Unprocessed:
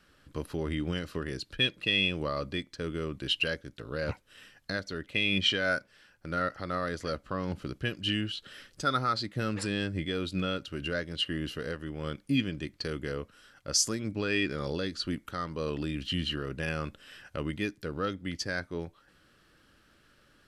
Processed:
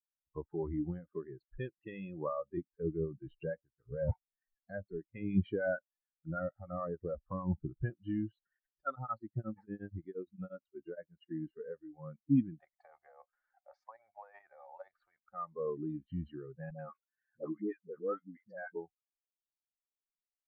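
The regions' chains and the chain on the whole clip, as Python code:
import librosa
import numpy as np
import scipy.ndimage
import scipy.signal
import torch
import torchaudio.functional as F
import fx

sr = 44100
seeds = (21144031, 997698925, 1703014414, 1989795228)

y = fx.chain(x, sr, fx.harmonic_tremolo(hz=6.7, depth_pct=50, crossover_hz=600.0),
    fx.low_shelf(hz=430.0, db=6.5), at=(2.57, 7.9))
y = fx.chain(y, sr, fx.block_float(bits=7),
    fx.tremolo_abs(hz=8.5), at=(8.55, 11.31))
y = fx.chain(y, sr, fx.low_shelf_res(hz=410.0, db=-11.0, q=3.0),
    fx.level_steps(step_db=10),
    fx.spectral_comp(ratio=2.0), at=(12.59, 15.19))
y = fx.chain(y, sr, fx.highpass(hz=130.0, slope=12),
    fx.dispersion(late='highs', ms=98.0, hz=550.0), at=(16.7, 18.76))
y = fx.bin_expand(y, sr, power=2.0)
y = fx.noise_reduce_blind(y, sr, reduce_db=20)
y = scipy.signal.sosfilt(scipy.signal.butter(4, 1200.0, 'lowpass', fs=sr, output='sos'), y)
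y = F.gain(torch.from_numpy(y), 2.0).numpy()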